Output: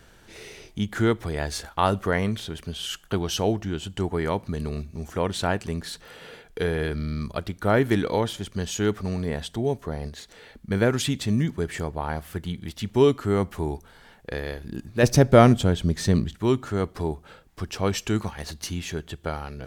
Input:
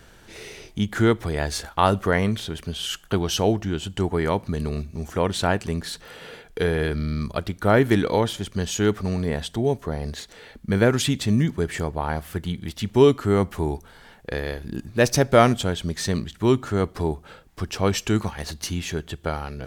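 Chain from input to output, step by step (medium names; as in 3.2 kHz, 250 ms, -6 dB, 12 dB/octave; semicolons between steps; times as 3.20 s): 10.08–10.71 s: compression, threshold -33 dBFS, peak gain reduction 10 dB; 15.03–16.36 s: bass shelf 490 Hz +8.5 dB; trim -3 dB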